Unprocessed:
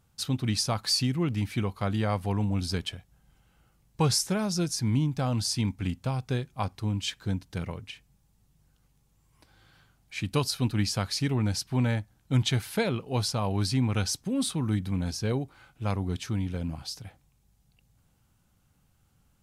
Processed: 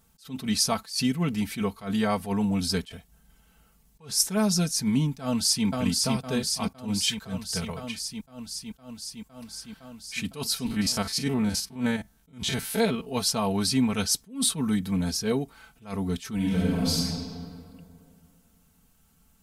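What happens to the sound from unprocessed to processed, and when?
0:05.21–0:05.65: delay throw 510 ms, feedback 80%, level −3 dB
0:06.98–0:07.84: parametric band 280 Hz −11 dB 0.51 octaves
0:10.66–0:13.11: spectrum averaged block by block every 50 ms
0:16.35–0:17.01: thrown reverb, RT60 2.4 s, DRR −5.5 dB
whole clip: high-shelf EQ 8,000 Hz +9.5 dB; comb filter 4.5 ms, depth 78%; level that may rise only so fast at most 180 dB per second; level +1.5 dB

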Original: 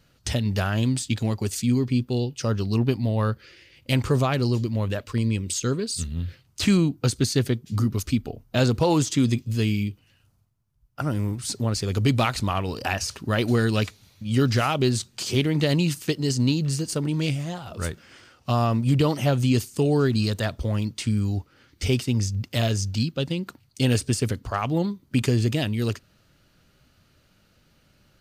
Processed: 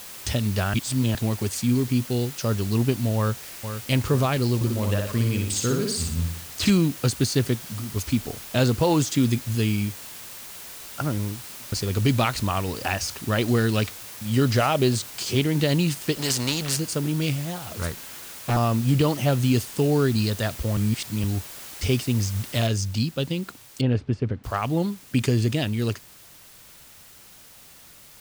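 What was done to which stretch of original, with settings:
0:00.74–0:01.15: reverse
0:03.16–0:03.90: delay throw 470 ms, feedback 55%, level −9 dB
0:04.55–0:06.70: repeating echo 60 ms, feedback 45%, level −3.5 dB
0:07.55–0:07.96: downward compressor 4 to 1, threshold −31 dBFS
0:09.27–0:09.89: parametric band 11,000 Hz +9.5 dB 0.38 octaves
0:11.01–0:11.72: fade out and dull
0:14.45–0:14.96: parametric band 600 Hz +5.5 dB
0:16.16–0:16.77: every bin compressed towards the loudest bin 2 to 1
0:17.61–0:18.57: highs frequency-modulated by the lows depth 0.97 ms
0:20.77–0:21.24: reverse
0:22.67: noise floor change −40 dB −49 dB
0:23.81–0:24.44: head-to-tape spacing loss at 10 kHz 40 dB

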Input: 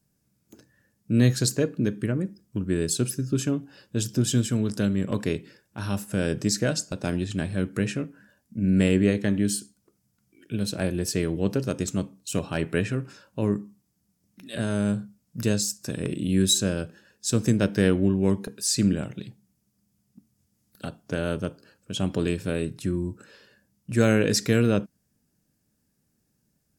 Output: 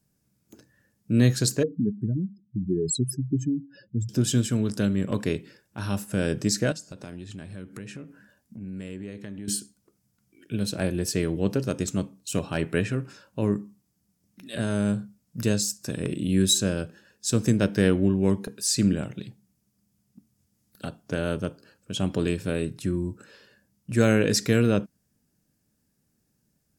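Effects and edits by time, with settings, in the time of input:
0:01.63–0:04.09: expanding power law on the bin magnitudes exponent 2.8
0:06.72–0:09.48: downward compressor 3 to 1, threshold −39 dBFS

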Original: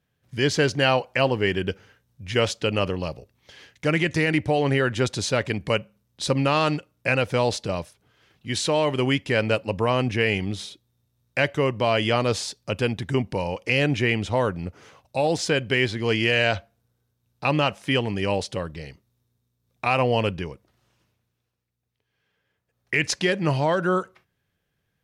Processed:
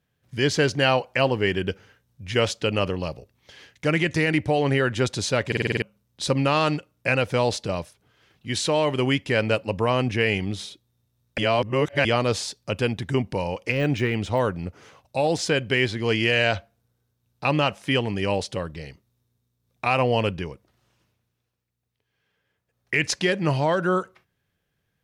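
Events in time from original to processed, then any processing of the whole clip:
0:05.47: stutter in place 0.05 s, 7 plays
0:11.38–0:12.05: reverse
0:13.71–0:14.40: de-essing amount 85%

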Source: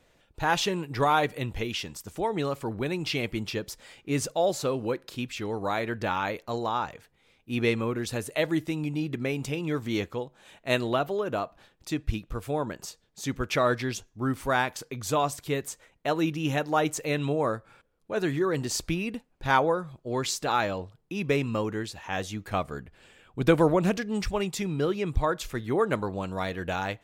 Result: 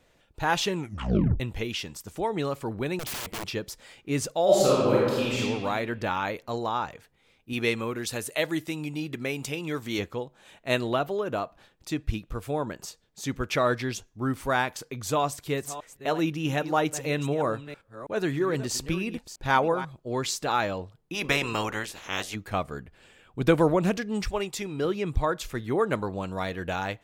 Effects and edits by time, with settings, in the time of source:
0:00.75: tape stop 0.65 s
0:02.99–0:03.45: wrap-around overflow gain 29 dB
0:04.44–0:05.38: thrown reverb, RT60 1.6 s, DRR −7.5 dB
0:07.53–0:09.99: spectral tilt +1.5 dB per octave
0:15.16–0:19.85: delay that plays each chunk backwards 323 ms, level −13 dB
0:21.13–0:22.34: ceiling on every frequency bin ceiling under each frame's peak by 21 dB
0:24.25–0:24.85: parametric band 170 Hz −9.5 dB 0.62 octaves

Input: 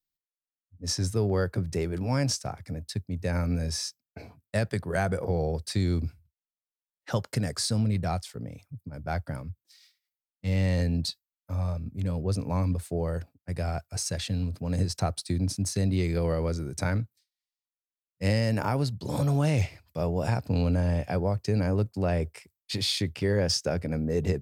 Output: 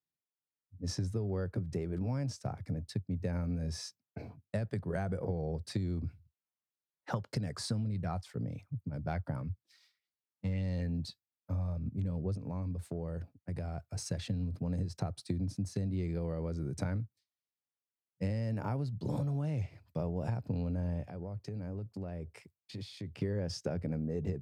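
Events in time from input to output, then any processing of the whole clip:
0:05.97–0:10.92: auto-filter bell 1.8 Hz 870–4,900 Hz +8 dB
0:12.37–0:13.98: downward compressor, threshold −34 dBFS
0:21.07–0:23.22: downward compressor, threshold −39 dBFS
whole clip: high-pass filter 95 Hz 24 dB per octave; spectral tilt −2.5 dB per octave; downward compressor 10 to 1, threshold −27 dBFS; level −4 dB

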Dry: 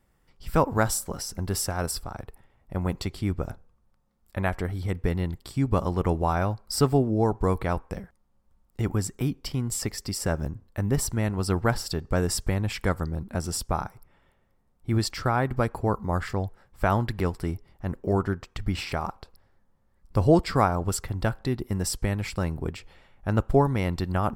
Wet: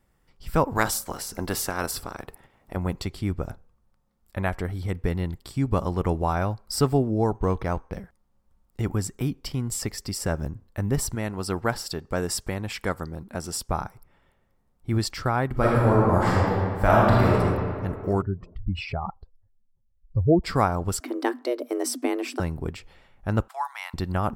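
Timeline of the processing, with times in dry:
0:00.75–0:02.75: ceiling on every frequency bin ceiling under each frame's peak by 16 dB
0:07.34–0:07.93: linearly interpolated sample-rate reduction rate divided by 6×
0:11.15–0:13.69: low-shelf EQ 130 Hz −10.5 dB
0:15.51–0:17.35: thrown reverb, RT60 2.2 s, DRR −6.5 dB
0:18.22–0:20.44: expanding power law on the bin magnitudes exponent 2.2
0:21.00–0:22.40: frequency shifter +230 Hz
0:23.48–0:23.94: Butterworth high-pass 800 Hz 48 dB per octave

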